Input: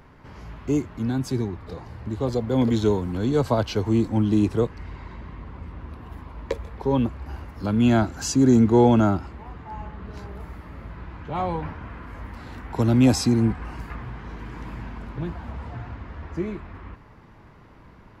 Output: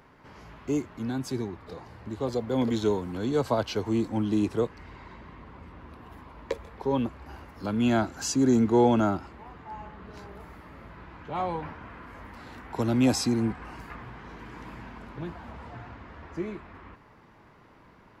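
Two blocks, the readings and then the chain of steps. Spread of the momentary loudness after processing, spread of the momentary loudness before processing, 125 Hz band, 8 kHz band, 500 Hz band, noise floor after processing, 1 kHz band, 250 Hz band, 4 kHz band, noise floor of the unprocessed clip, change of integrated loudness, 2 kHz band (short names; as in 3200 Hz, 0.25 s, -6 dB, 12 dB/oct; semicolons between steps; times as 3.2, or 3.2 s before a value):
23 LU, 21 LU, -9.0 dB, -2.5 dB, -3.5 dB, -56 dBFS, -3.0 dB, -5.5 dB, -2.5 dB, -49 dBFS, -5.0 dB, -2.5 dB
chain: low shelf 140 Hz -11.5 dB; gain -2.5 dB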